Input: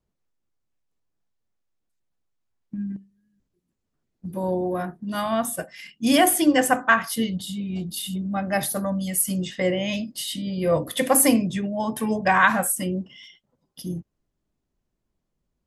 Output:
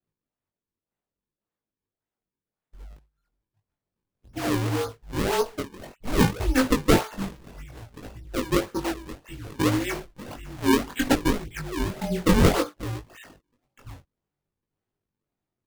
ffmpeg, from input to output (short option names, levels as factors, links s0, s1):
-filter_complex "[0:a]adynamicequalizer=threshold=0.0178:dfrequency=300:dqfactor=1.5:tfrequency=300:tqfactor=1.5:attack=5:release=100:ratio=0.375:range=3:mode=cutabove:tftype=bell,asplit=2[s0][s1];[s1]alimiter=limit=0.2:level=0:latency=1:release=146,volume=0.794[s2];[s0][s2]amix=inputs=2:normalize=0,highpass=f=330:t=q:w=0.5412,highpass=f=330:t=q:w=1.307,lowpass=f=2900:t=q:w=0.5176,lowpass=f=2900:t=q:w=0.7071,lowpass=f=2900:t=q:w=1.932,afreqshift=-250,acrusher=samples=38:mix=1:aa=0.000001:lfo=1:lforange=60.8:lforate=1.8,flanger=delay=19:depth=2.7:speed=0.61"